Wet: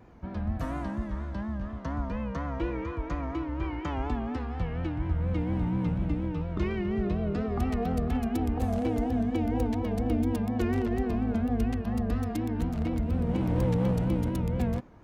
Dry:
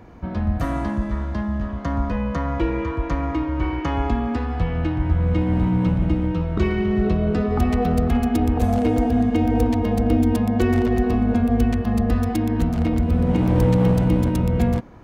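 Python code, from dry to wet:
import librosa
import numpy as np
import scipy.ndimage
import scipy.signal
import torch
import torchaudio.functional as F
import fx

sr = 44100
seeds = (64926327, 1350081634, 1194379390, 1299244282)

y = fx.vibrato(x, sr, rate_hz=4.2, depth_cents=91.0)
y = F.gain(torch.from_numpy(y), -9.0).numpy()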